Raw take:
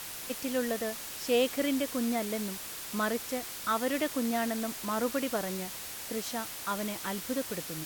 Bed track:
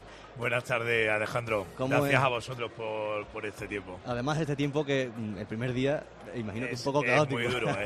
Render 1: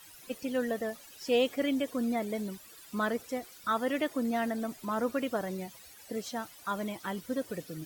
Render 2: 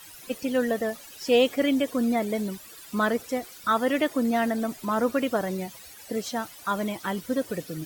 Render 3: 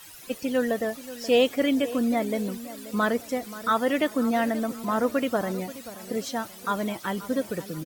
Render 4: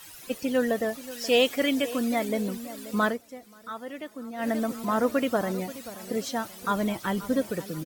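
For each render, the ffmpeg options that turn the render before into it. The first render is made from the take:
-af "afftdn=nr=16:nf=-41"
-af "volume=2.11"
-filter_complex "[0:a]asplit=2[s0][s1];[s1]adelay=531,lowpass=f=2000:p=1,volume=0.178,asplit=2[s2][s3];[s3]adelay=531,lowpass=f=2000:p=1,volume=0.42,asplit=2[s4][s5];[s5]adelay=531,lowpass=f=2000:p=1,volume=0.42,asplit=2[s6][s7];[s7]adelay=531,lowpass=f=2000:p=1,volume=0.42[s8];[s0][s2][s4][s6][s8]amix=inputs=5:normalize=0"
-filter_complex "[0:a]asettb=1/sr,asplit=3[s0][s1][s2];[s0]atrim=end=1.114[s3];[s1]atrim=start=1.11:end=2.29,asetpts=PTS-STARTPTS,afade=t=in:d=0.004:c=qsin,afade=t=out:st=1.176:d=0.004:c=qsin,tiltshelf=f=910:g=-3.5[s4];[s2]atrim=start=2.286[s5];[s3][s4]acrossfade=d=0.004:c1=hsin:c2=qsin[s6];[s6][s5]acrossfade=d=0.004:c1=qsin:c2=hsin,asettb=1/sr,asplit=3[s7][s8][s9];[s7]atrim=end=6.624[s10];[s8]atrim=start=6.62:end=7.44,asetpts=PTS-STARTPTS,afade=t=in:d=0.004:c=qsin,afade=t=out:st=0.816:d=0.004:c=qsin,lowshelf=f=110:g=11[s11];[s9]atrim=start=7.436[s12];[s10][s11]acrossfade=d=0.004:c1=hsin:c2=qsin[s13];[s13][s12]acrossfade=d=0.004:c1=qsin:c2=hsin,asplit=3[s14][s15][s16];[s14]atrim=end=3.19,asetpts=PTS-STARTPTS,afade=t=out:st=3.06:d=0.13:silence=0.199526[s17];[s15]atrim=start=3.19:end=4.37,asetpts=PTS-STARTPTS,volume=0.2[s18];[s16]atrim=start=4.37,asetpts=PTS-STARTPTS,afade=t=in:d=0.13:silence=0.199526[s19];[s17][s18][s19]concat=n=3:v=0:a=1"

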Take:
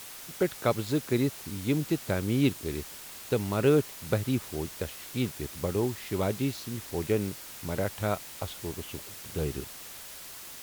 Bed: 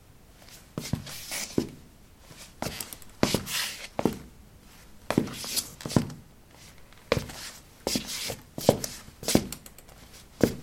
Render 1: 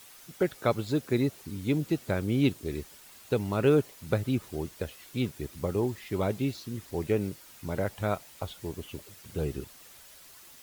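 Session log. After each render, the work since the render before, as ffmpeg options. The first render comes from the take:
-af "afftdn=nr=9:nf=-44"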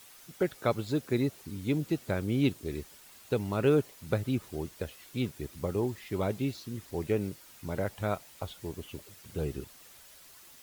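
-af "volume=0.794"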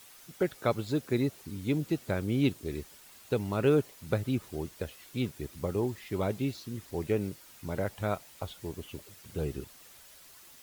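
-af anull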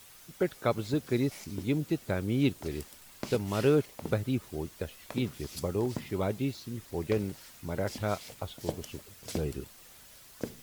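-filter_complex "[1:a]volume=0.188[s0];[0:a][s0]amix=inputs=2:normalize=0"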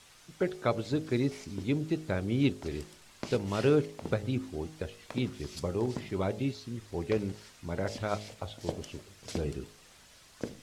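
-af "lowpass=7500,bandreject=f=52.38:t=h:w=4,bandreject=f=104.76:t=h:w=4,bandreject=f=157.14:t=h:w=4,bandreject=f=209.52:t=h:w=4,bandreject=f=261.9:t=h:w=4,bandreject=f=314.28:t=h:w=4,bandreject=f=366.66:t=h:w=4,bandreject=f=419.04:t=h:w=4,bandreject=f=471.42:t=h:w=4,bandreject=f=523.8:t=h:w=4,bandreject=f=576.18:t=h:w=4,bandreject=f=628.56:t=h:w=4,bandreject=f=680.94:t=h:w=4,bandreject=f=733.32:t=h:w=4,bandreject=f=785.7:t=h:w=4,bandreject=f=838.08:t=h:w=4"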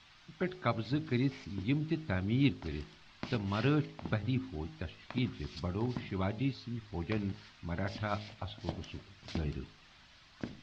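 -af "lowpass=f=4600:w=0.5412,lowpass=f=4600:w=1.3066,equalizer=f=470:t=o:w=0.59:g=-13.5"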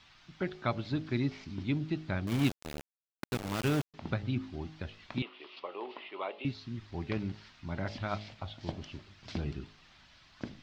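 -filter_complex "[0:a]asettb=1/sr,asplit=3[s0][s1][s2];[s0]atrim=end=2.274[s3];[s1]atrim=start=2.27:end=3.94,asetpts=PTS-STARTPTS,afade=t=in:d=0.004:c=qsin,afade=t=out:st=1.666:d=0.004:c=qsin,aeval=exprs='val(0)*gte(abs(val(0)),0.0237)':c=same[s4];[s2]atrim=start=3.936[s5];[s3][s4]acrossfade=d=0.004:c1=hsin:c2=qsin[s6];[s6][s5]acrossfade=d=0.004:c1=qsin:c2=hsin,asettb=1/sr,asplit=3[s7][s8][s9];[s7]atrim=end=5.224[s10];[s8]atrim=start=5.22:end=6.45,asetpts=PTS-STARTPTS,afade=t=in:d=0.004:c=qsin,afade=t=out:st=1.226:d=0.004:c=qsin,highpass=f=420:w=0.5412,highpass=f=420:w=1.3066,equalizer=f=470:t=q:w=4:g=5,equalizer=f=1100:t=q:w=4:g=5,equalizer=f=1600:t=q:w=4:g=-7,equalizer=f=2800:t=q:w=4:g=7,lowpass=f=3600:w=0.5412,lowpass=f=3600:w=1.3066[s11];[s9]atrim=start=6.446[s12];[s10][s11]acrossfade=d=0.004:c1=hsin:c2=qsin[s13];[s13][s12]acrossfade=d=0.004:c1=qsin:c2=hsin"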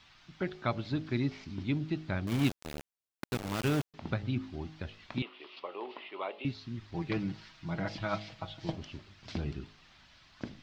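-filter_complex "[0:a]asettb=1/sr,asplit=3[s0][s1][s2];[s0]atrim=end=6.944[s3];[s1]atrim=start=6.94:end=8.76,asetpts=PTS-STARTPTS,afade=t=in:d=0.004:c=qsin,afade=t=out:st=1.816:d=0.004:c=qsin,aecho=1:1:6.2:0.73,atrim=end_sample=80262[s4];[s2]atrim=start=8.756[s5];[s3][s4]acrossfade=d=0.004:c1=hsin:c2=qsin[s6];[s6][s5]acrossfade=d=0.004:c1=qsin:c2=hsin"

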